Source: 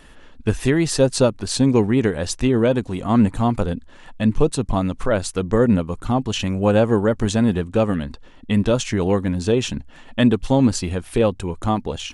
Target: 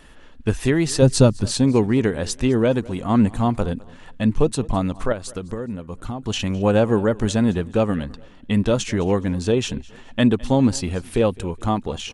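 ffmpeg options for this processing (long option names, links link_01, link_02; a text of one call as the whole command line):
ffmpeg -i in.wav -filter_complex "[0:a]asettb=1/sr,asplit=3[link_01][link_02][link_03];[link_01]atrim=end=1.024[link_04];[link_02]atrim=start=1.02:end=1.46,asetpts=PTS-STARTPTS,afade=type=in:duration=0.004:curve=qsin,afade=type=out:start_time=0.436:duration=0.004:curve=qsin,bass=frequency=250:gain=10,treble=frequency=4000:gain=3[link_05];[link_03]atrim=start=1.456[link_06];[link_04][link_05]acrossfade=duration=0.004:curve1=hsin:curve2=qsin[link_07];[link_07][link_06]acrossfade=duration=0.004:curve1=qsin:curve2=hsin,asettb=1/sr,asplit=3[link_08][link_09][link_10];[link_08]atrim=end=5.124[link_11];[link_09]atrim=start=5.12:end=6.23,asetpts=PTS-STARTPTS,afade=type=in:duration=0.004:curve=qsin,afade=type=out:start_time=1.106:duration=0.004:curve=qsin,acompressor=threshold=-25dB:ratio=8[link_12];[link_10]atrim=start=6.226[link_13];[link_11][link_12]acrossfade=duration=0.004:curve1=hsin:curve2=qsin[link_14];[link_14][link_13]acrossfade=duration=0.004:curve1=qsin:curve2=hsin,aecho=1:1:209|418:0.075|0.0262,volume=-1dB" out.wav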